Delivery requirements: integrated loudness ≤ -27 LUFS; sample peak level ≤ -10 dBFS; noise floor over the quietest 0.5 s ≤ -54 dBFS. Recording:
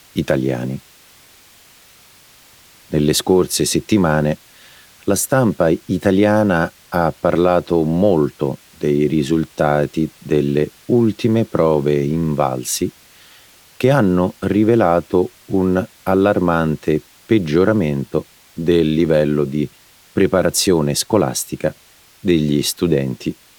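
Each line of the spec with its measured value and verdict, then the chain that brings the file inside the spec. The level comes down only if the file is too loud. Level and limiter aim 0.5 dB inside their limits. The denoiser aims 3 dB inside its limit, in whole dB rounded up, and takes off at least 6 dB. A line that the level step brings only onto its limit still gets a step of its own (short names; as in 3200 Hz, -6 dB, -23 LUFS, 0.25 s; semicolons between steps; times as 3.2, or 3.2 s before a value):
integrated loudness -17.5 LUFS: fail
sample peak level -2.0 dBFS: fail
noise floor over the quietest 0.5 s -49 dBFS: fail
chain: gain -10 dB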